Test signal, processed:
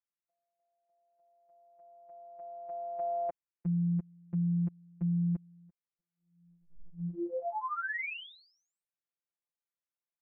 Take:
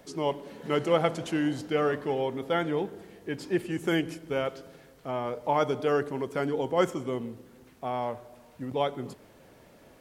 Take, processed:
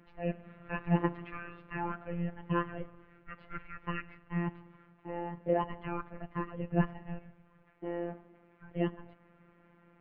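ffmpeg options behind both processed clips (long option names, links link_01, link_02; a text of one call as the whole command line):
ffmpeg -i in.wav -af "highpass=frequency=480:width_type=q:width=0.5412,highpass=frequency=480:width_type=q:width=1.307,lowpass=frequency=2800:width_type=q:width=0.5176,lowpass=frequency=2800:width_type=q:width=0.7071,lowpass=frequency=2800:width_type=q:width=1.932,afreqshift=-360,afftfilt=real='hypot(re,im)*cos(PI*b)':imag='0':win_size=1024:overlap=0.75" out.wav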